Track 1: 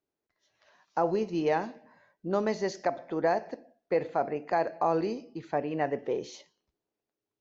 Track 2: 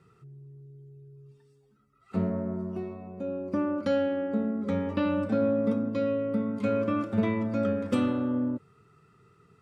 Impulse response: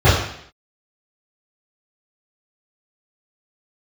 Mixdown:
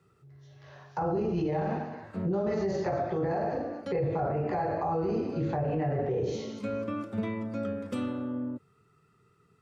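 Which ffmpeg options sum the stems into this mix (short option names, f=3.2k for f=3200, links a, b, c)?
-filter_complex "[0:a]volume=2.5dB,asplit=4[a][b][c][d];[b]volume=-18.5dB[e];[c]volume=-15dB[f];[1:a]highshelf=f=5.3k:g=4.5,volume=-5.5dB[g];[d]apad=whole_len=424198[h];[g][h]sidechaincompress=threshold=-35dB:ratio=8:attack=16:release=597[i];[2:a]atrim=start_sample=2205[j];[e][j]afir=irnorm=-1:irlink=0[k];[f]aecho=0:1:230|460|690|920:1|0.29|0.0841|0.0244[l];[a][i][k][l]amix=inputs=4:normalize=0,acrossover=split=190[m][n];[n]acompressor=threshold=-30dB:ratio=2[o];[m][o]amix=inputs=2:normalize=0,alimiter=limit=-22dB:level=0:latency=1:release=40"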